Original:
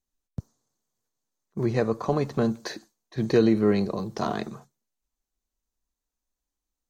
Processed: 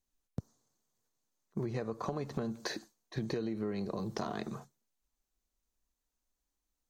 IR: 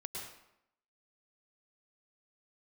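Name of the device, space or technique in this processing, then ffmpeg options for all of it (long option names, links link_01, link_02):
serial compression, peaks first: -af "acompressor=threshold=-28dB:ratio=6,acompressor=threshold=-34dB:ratio=2.5"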